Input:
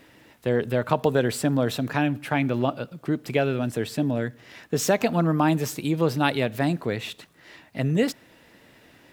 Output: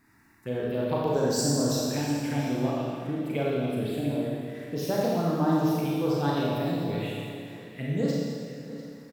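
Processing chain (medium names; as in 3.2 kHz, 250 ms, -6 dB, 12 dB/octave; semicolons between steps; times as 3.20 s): 1.13–1.85 s: resonant high shelf 4.3 kHz +9 dB, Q 3; touch-sensitive phaser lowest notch 530 Hz, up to 2.5 kHz, full sweep at -17.5 dBFS; delay 696 ms -15.5 dB; Schroeder reverb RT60 2 s, combs from 28 ms, DRR -5 dB; trim -8.5 dB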